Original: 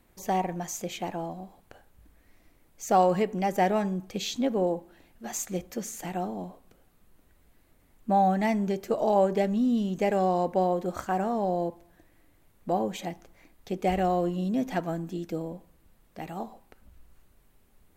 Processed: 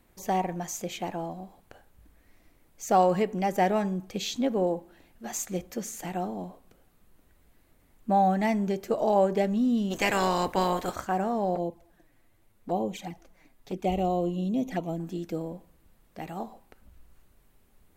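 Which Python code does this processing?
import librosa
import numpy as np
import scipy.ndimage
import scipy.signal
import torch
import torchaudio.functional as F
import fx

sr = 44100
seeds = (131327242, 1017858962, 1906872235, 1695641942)

y = fx.spec_clip(x, sr, under_db=22, at=(9.9, 10.94), fade=0.02)
y = fx.env_flanger(y, sr, rest_ms=9.8, full_db=-26.0, at=(11.55, 15.0))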